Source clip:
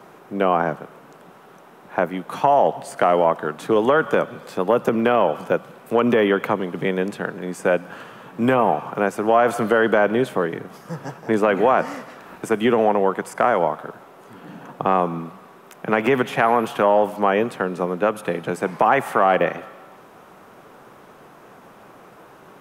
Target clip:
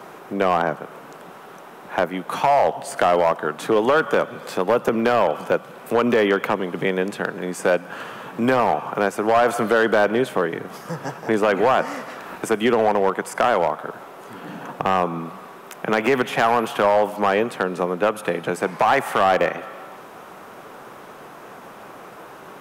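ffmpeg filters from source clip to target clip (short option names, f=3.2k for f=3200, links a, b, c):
-filter_complex "[0:a]asplit=2[a][b];[b]acompressor=threshold=-31dB:ratio=6,volume=1.5dB[c];[a][c]amix=inputs=2:normalize=0,lowshelf=f=270:g=-6,asoftclip=type=hard:threshold=-10.5dB"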